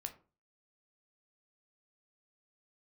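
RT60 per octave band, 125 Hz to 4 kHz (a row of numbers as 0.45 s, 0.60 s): 0.45 s, 0.40 s, 0.40 s, 0.35 s, 0.25 s, 0.20 s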